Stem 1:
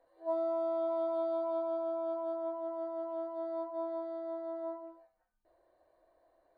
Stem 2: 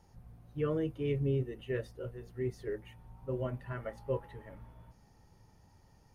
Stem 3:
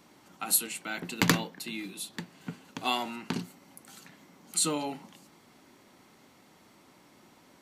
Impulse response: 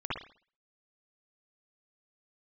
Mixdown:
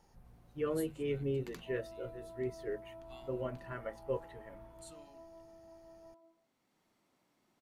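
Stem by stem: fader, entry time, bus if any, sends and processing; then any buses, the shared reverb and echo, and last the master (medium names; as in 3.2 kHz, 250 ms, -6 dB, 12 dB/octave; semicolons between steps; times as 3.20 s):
-17.0 dB, 1.40 s, no send, low-pass 1.1 kHz
-0.5 dB, 0.00 s, no send, peaking EQ 100 Hz -8 dB 1.8 oct; hum notches 50/100/150 Hz
-18.0 dB, 0.25 s, no send, auto duck -10 dB, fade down 1.15 s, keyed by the second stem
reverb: none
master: none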